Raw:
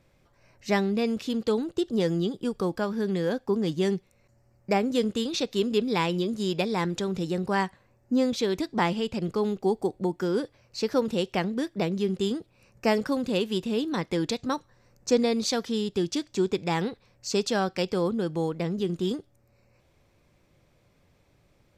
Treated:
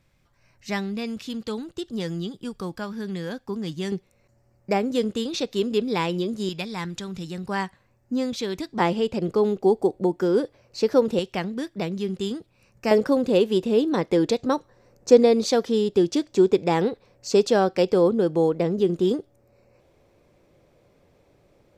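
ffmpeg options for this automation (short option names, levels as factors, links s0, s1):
-af "asetnsamples=n=441:p=0,asendcmd='3.92 equalizer g 2;6.49 equalizer g -9.5;7.49 equalizer g -3;8.8 equalizer g 7;11.19 equalizer g -1.5;12.91 equalizer g 9.5',equalizer=f=470:t=o:w=1.8:g=-7"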